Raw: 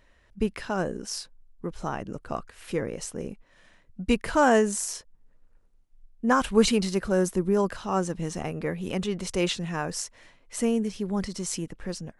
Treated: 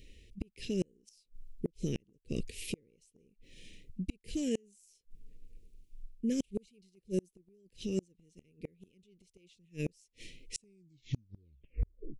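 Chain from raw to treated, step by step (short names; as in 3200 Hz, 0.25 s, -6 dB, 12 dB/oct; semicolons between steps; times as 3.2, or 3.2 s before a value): tape stop at the end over 1.73 s; reverse; compressor 8:1, threshold -30 dBFS, peak gain reduction 16 dB; reverse; elliptic band-stop 440–2400 Hz, stop band 40 dB; flipped gate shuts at -29 dBFS, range -37 dB; gain +7.5 dB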